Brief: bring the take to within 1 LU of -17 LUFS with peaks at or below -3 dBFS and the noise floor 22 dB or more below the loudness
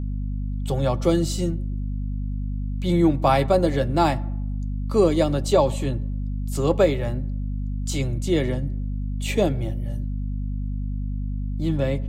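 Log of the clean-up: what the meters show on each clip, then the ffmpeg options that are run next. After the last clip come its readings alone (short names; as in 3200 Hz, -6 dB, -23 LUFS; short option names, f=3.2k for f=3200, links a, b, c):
hum 50 Hz; harmonics up to 250 Hz; hum level -24 dBFS; loudness -24.0 LUFS; peak -6.0 dBFS; loudness target -17.0 LUFS
-> -af "bandreject=f=50:t=h:w=4,bandreject=f=100:t=h:w=4,bandreject=f=150:t=h:w=4,bandreject=f=200:t=h:w=4,bandreject=f=250:t=h:w=4"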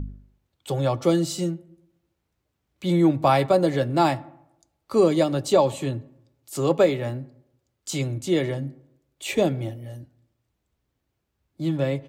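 hum none; loudness -23.5 LUFS; peak -7.0 dBFS; loudness target -17.0 LUFS
-> -af "volume=6.5dB,alimiter=limit=-3dB:level=0:latency=1"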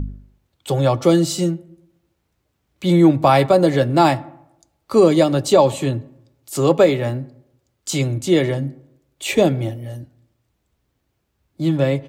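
loudness -17.5 LUFS; peak -3.0 dBFS; noise floor -71 dBFS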